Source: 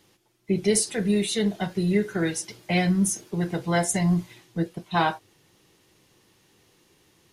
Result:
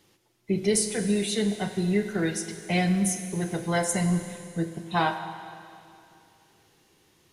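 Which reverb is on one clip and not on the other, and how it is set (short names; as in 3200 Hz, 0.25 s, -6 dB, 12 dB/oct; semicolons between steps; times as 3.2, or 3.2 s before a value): Schroeder reverb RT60 2.6 s, combs from 33 ms, DRR 8.5 dB; gain -2 dB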